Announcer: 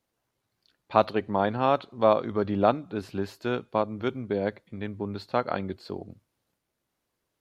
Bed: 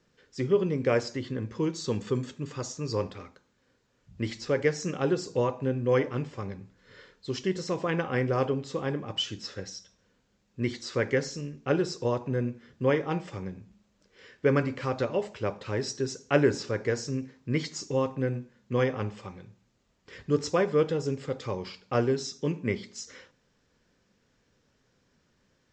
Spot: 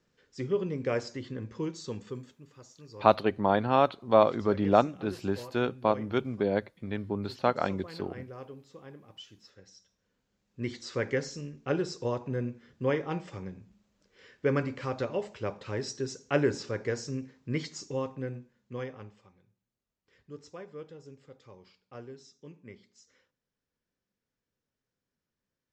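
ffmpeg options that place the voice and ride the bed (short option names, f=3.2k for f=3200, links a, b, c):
-filter_complex "[0:a]adelay=2100,volume=0dB[a];[1:a]volume=9dB,afade=t=out:st=1.61:d=0.83:silence=0.237137,afade=t=in:st=9.61:d=1.28:silence=0.199526,afade=t=out:st=17.51:d=1.79:silence=0.158489[b];[a][b]amix=inputs=2:normalize=0"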